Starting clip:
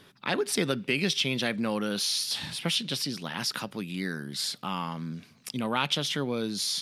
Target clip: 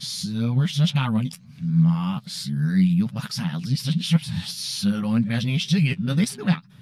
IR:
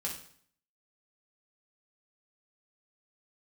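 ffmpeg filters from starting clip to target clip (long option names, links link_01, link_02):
-af "areverse,lowshelf=frequency=240:width_type=q:width=3:gain=12.5,flanger=delay=6.8:depth=5.8:regen=30:speed=1.9:shape=triangular,volume=2.5dB"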